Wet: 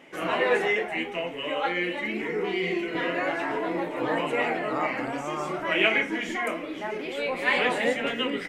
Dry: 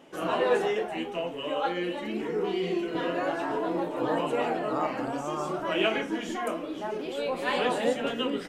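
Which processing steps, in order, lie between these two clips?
peaking EQ 2.1 kHz +14.5 dB 0.51 oct

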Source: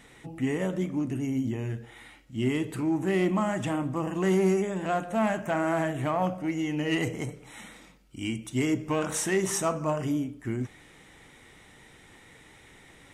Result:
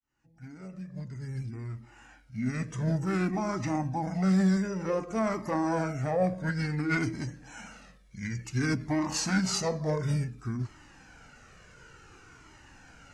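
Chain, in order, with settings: fade-in on the opening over 3.04 s; formant shift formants -5 st; Shepard-style flanger falling 0.56 Hz; trim +4 dB

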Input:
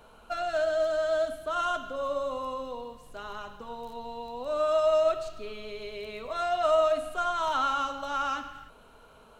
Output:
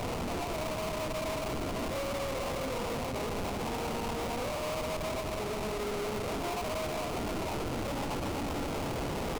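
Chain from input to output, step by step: one-bit comparator; high-pass 66 Hz 24 dB/octave; treble shelf 4.7 kHz -6.5 dB; doubling 49 ms -5 dB; on a send: delay 463 ms -6.5 dB; on the sum: sample-rate reducer 1.7 kHz, jitter 20%; bass shelf 130 Hz +8 dB; hard clipper -32.5 dBFS, distortion -7 dB; band-stop 1.1 kHz, Q 22; loudspeaker Doppler distortion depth 0.37 ms

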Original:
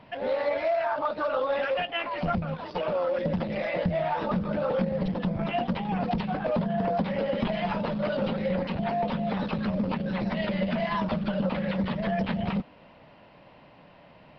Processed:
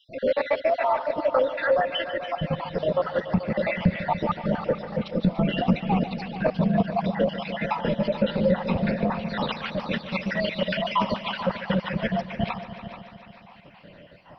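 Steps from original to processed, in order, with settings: random holes in the spectrogram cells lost 64%; 9.18–11.45 s: tilt shelf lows -6.5 dB, about 730 Hz; multi-head delay 145 ms, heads all three, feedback 51%, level -15.5 dB; trim +7 dB

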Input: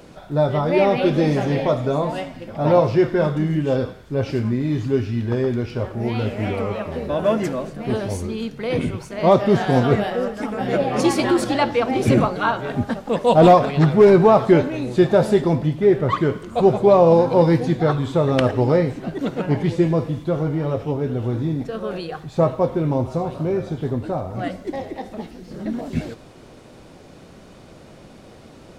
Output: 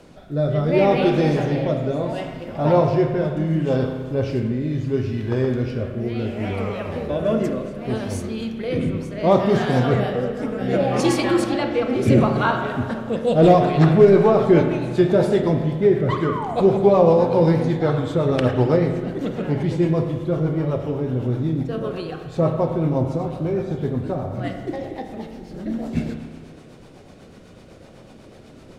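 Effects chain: rotary cabinet horn 0.7 Hz, later 8 Hz, at 13.76 s; painted sound fall, 16.26–16.55 s, 640–1300 Hz -29 dBFS; spring tank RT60 1.7 s, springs 31/40 ms, chirp 25 ms, DRR 5 dB

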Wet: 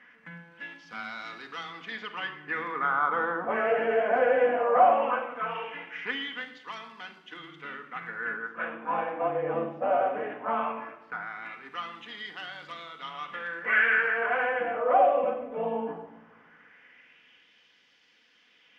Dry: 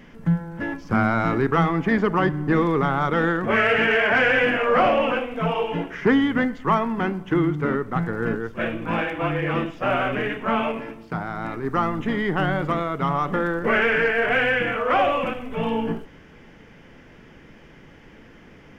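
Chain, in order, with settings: LFO band-pass sine 0.18 Hz 610–4200 Hz; simulated room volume 3600 m³, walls furnished, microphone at 1.9 m

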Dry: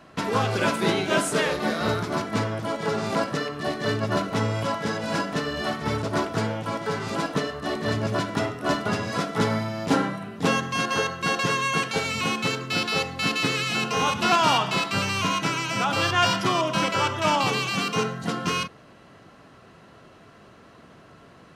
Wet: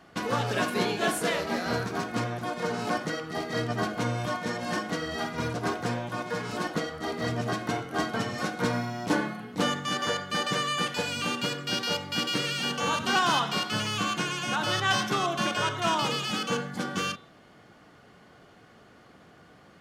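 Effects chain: de-hum 116.5 Hz, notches 31; speed mistake 44.1 kHz file played as 48 kHz; trim -4 dB

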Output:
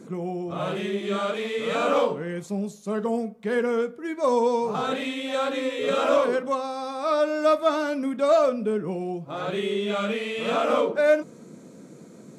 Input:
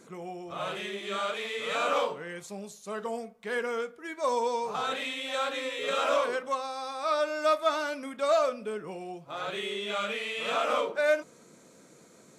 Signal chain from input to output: peaking EQ 200 Hz +14.5 dB 2.8 oct

